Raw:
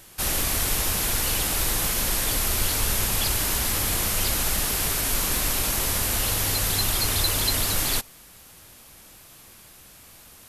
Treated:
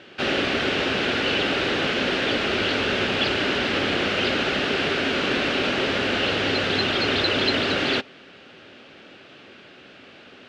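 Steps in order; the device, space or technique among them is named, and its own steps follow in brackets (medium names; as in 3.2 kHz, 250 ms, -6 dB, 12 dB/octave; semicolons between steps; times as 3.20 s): kitchen radio (cabinet simulation 170–3700 Hz, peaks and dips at 260 Hz +7 dB, 390 Hz +8 dB, 560 Hz +5 dB, 1 kHz -7 dB, 1.5 kHz +5 dB, 2.8 kHz +5 dB); trim +5.5 dB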